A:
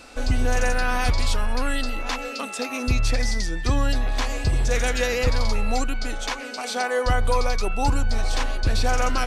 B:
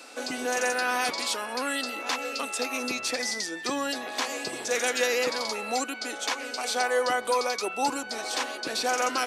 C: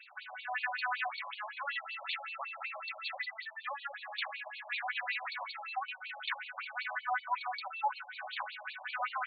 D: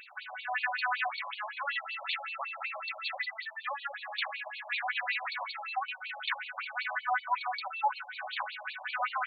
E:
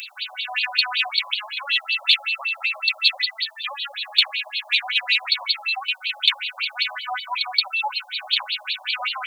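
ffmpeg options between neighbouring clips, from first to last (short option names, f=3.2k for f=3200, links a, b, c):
-af "highpass=f=270:w=0.5412,highpass=f=270:w=1.3066,highshelf=f=5.6k:g=5,volume=-1.5dB"
-af "equalizer=f=1.8k:t=o:w=0.77:g=3.5,afftfilt=real='re*between(b*sr/1024,770*pow(3300/770,0.5+0.5*sin(2*PI*5.3*pts/sr))/1.41,770*pow(3300/770,0.5+0.5*sin(2*PI*5.3*pts/sr))*1.41)':imag='im*between(b*sr/1024,770*pow(3300/770,0.5+0.5*sin(2*PI*5.3*pts/sr))/1.41,770*pow(3300/770,0.5+0.5*sin(2*PI*5.3*pts/sr))*1.41)':win_size=1024:overlap=0.75,volume=-4dB"
-af "acompressor=mode=upward:threshold=-57dB:ratio=2.5,volume=3.5dB"
-af "aexciter=amount=8.9:drive=6.8:freq=2.6k,volume=1.5dB"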